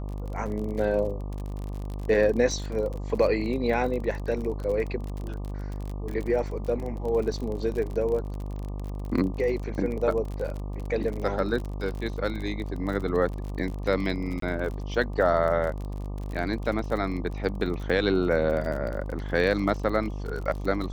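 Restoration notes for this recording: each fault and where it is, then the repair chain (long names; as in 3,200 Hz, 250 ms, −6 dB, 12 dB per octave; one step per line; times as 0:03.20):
mains buzz 50 Hz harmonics 24 −33 dBFS
surface crackle 39 per second −32 dBFS
0:14.40–0:14.42: drop-out 23 ms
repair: click removal
hum removal 50 Hz, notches 24
repair the gap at 0:14.40, 23 ms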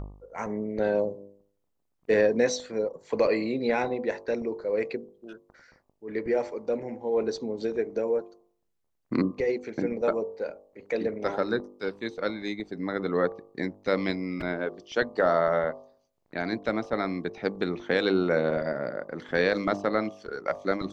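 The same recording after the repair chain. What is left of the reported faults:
none of them is left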